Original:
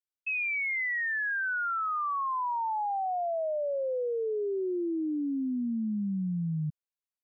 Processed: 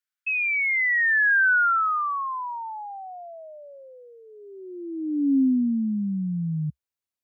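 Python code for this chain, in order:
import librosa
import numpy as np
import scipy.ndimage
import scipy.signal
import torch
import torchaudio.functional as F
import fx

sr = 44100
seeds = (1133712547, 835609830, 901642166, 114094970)

y = fx.filter_sweep_highpass(x, sr, from_hz=1500.0, to_hz=68.0, start_s=4.23, end_s=6.28, q=2.9)
y = y * 10.0 ** (2.5 / 20.0)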